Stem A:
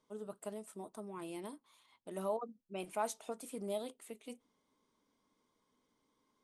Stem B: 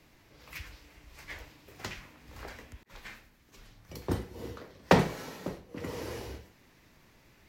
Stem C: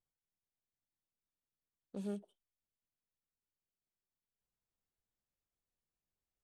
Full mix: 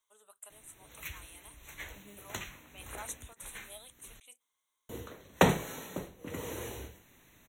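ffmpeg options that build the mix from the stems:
-filter_complex "[0:a]highpass=1.2k,volume=-3.5dB[a];[1:a]adelay=500,volume=-2dB,asplit=3[b][c][d];[b]atrim=end=4.2,asetpts=PTS-STARTPTS,afade=t=out:st=4.196:d=0.004:c=hsin[e];[c]atrim=start=4.2:end=4.89,asetpts=PTS-STARTPTS,volume=0[f];[d]atrim=start=4.89,asetpts=PTS-STARTPTS,afade=t=in:d=0.004:c=hsin[g];[e][f][g]concat=n=3:v=0:a=1[h];[2:a]acrusher=samples=35:mix=1:aa=0.000001:lfo=1:lforange=35:lforate=0.34,volume=-15.5dB,asplit=2[i][j];[j]apad=whole_len=283892[k];[a][k]sidechaincompress=threshold=-56dB:ratio=8:attack=16:release=1090[l];[l][h][i]amix=inputs=3:normalize=0,asuperstop=centerf=4900:order=12:qfactor=3,highshelf=f=5.2k:g=11"

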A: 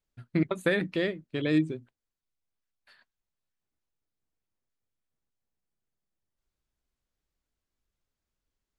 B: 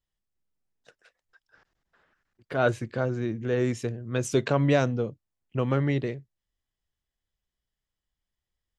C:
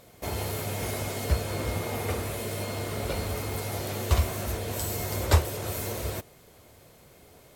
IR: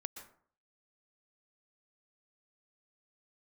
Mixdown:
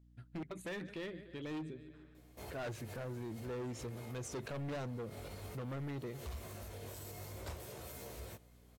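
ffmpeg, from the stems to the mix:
-filter_complex "[0:a]volume=-6.5dB,asplit=2[a][b];[b]volume=-21dB[c];[1:a]aeval=exprs='val(0)+0.00141*(sin(2*PI*60*n/s)+sin(2*PI*2*60*n/s)/2+sin(2*PI*3*60*n/s)/3+sin(2*PI*4*60*n/s)/4+sin(2*PI*5*60*n/s)/5)':c=same,volume=-5dB,asplit=2[d][e];[2:a]flanger=delay=15:depth=6.7:speed=0.52,adelay=2150,volume=-11dB[f];[e]apad=whole_len=428205[g];[f][g]sidechaincompress=threshold=-37dB:ratio=8:attack=9:release=146[h];[c]aecho=0:1:148|296|444|592|740|888|1036|1184|1332:1|0.58|0.336|0.195|0.113|0.0656|0.0381|0.0221|0.0128[i];[a][d][h][i]amix=inputs=4:normalize=0,volume=31.5dB,asoftclip=hard,volume=-31.5dB,alimiter=level_in=14.5dB:limit=-24dB:level=0:latency=1:release=68,volume=-14.5dB"

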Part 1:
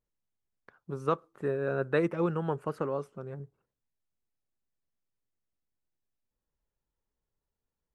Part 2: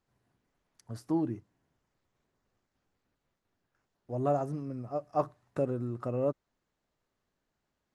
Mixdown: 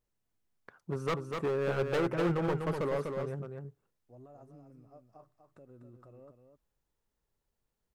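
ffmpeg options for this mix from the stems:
-filter_complex "[0:a]asoftclip=type=hard:threshold=-30dB,volume=2.5dB,asplit=2[a][b];[b]volume=-5dB[c];[1:a]alimiter=level_in=3.5dB:limit=-24dB:level=0:latency=1:release=144,volume=-3.5dB,volume=-18dB,asplit=2[d][e];[e]volume=-7.5dB[f];[c][f]amix=inputs=2:normalize=0,aecho=0:1:247:1[g];[a][d][g]amix=inputs=3:normalize=0"

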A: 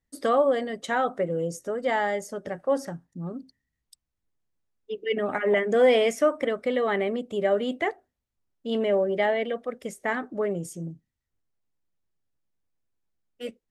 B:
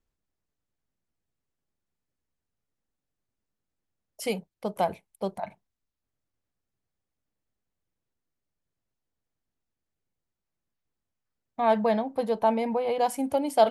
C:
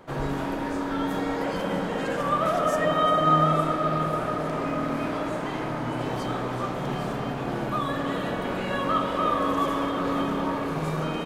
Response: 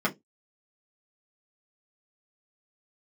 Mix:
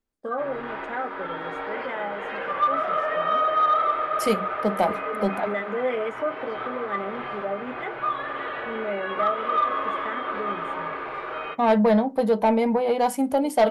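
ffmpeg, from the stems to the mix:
-filter_complex "[0:a]afwtdn=0.0398,agate=range=-27dB:threshold=-45dB:ratio=16:detection=peak,lowshelf=f=470:g=-8,volume=-9.5dB,asplit=3[a][b][c];[b]volume=-10dB[d];[1:a]dynaudnorm=f=570:g=3:m=7dB,volume=-3.5dB,asplit=2[e][f];[f]volume=-15.5dB[g];[2:a]firequalizer=gain_entry='entry(130,0);entry(200,-21);entry(360,0);entry(1200,9);entry(2300,12);entry(6400,-16);entry(12000,-21)':delay=0.05:min_phase=1,adelay=300,volume=-11.5dB,asplit=2[h][i];[i]volume=-12dB[j];[c]apad=whole_len=513850[k];[h][k]sidechaincompress=threshold=-38dB:ratio=8:attack=16:release=258[l];[3:a]atrim=start_sample=2205[m];[d][g][j]amix=inputs=3:normalize=0[n];[n][m]afir=irnorm=-1:irlink=0[o];[a][e][l][o]amix=inputs=4:normalize=0,asoftclip=type=tanh:threshold=-11dB"

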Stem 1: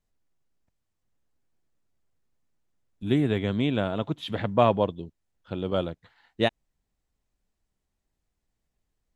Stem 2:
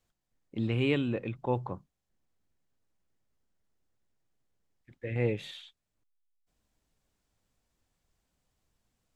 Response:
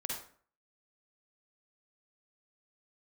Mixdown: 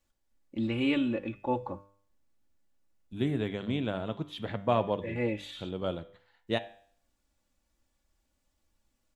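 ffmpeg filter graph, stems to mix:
-filter_complex "[0:a]adelay=100,volume=-6.5dB,asplit=2[a][b];[b]volume=-20.5dB[c];[1:a]aecho=1:1:3.5:0.73,volume=-1dB[d];[2:a]atrim=start_sample=2205[e];[c][e]afir=irnorm=-1:irlink=0[f];[a][d][f]amix=inputs=3:normalize=0,bandreject=f=99.36:t=h:w=4,bandreject=f=198.72:t=h:w=4,bandreject=f=298.08:t=h:w=4,bandreject=f=397.44:t=h:w=4,bandreject=f=496.8:t=h:w=4,bandreject=f=596.16:t=h:w=4,bandreject=f=695.52:t=h:w=4,bandreject=f=794.88:t=h:w=4,bandreject=f=894.24:t=h:w=4,bandreject=f=993.6:t=h:w=4,bandreject=f=1.09296k:t=h:w=4,bandreject=f=1.19232k:t=h:w=4,bandreject=f=1.29168k:t=h:w=4,bandreject=f=1.39104k:t=h:w=4,bandreject=f=1.4904k:t=h:w=4,bandreject=f=1.58976k:t=h:w=4,bandreject=f=1.68912k:t=h:w=4,bandreject=f=1.78848k:t=h:w=4,bandreject=f=1.88784k:t=h:w=4,bandreject=f=1.9872k:t=h:w=4,bandreject=f=2.08656k:t=h:w=4,bandreject=f=2.18592k:t=h:w=4,bandreject=f=2.28528k:t=h:w=4,bandreject=f=2.38464k:t=h:w=4,bandreject=f=2.484k:t=h:w=4,bandreject=f=2.58336k:t=h:w=4,bandreject=f=2.68272k:t=h:w=4,bandreject=f=2.78208k:t=h:w=4,bandreject=f=2.88144k:t=h:w=4,bandreject=f=2.9808k:t=h:w=4,bandreject=f=3.08016k:t=h:w=4,bandreject=f=3.17952k:t=h:w=4,bandreject=f=3.27888k:t=h:w=4,bandreject=f=3.37824k:t=h:w=4,bandreject=f=3.4776k:t=h:w=4,bandreject=f=3.57696k:t=h:w=4,bandreject=f=3.67632k:t=h:w=4,bandreject=f=3.77568k:t=h:w=4,bandreject=f=3.87504k:t=h:w=4"

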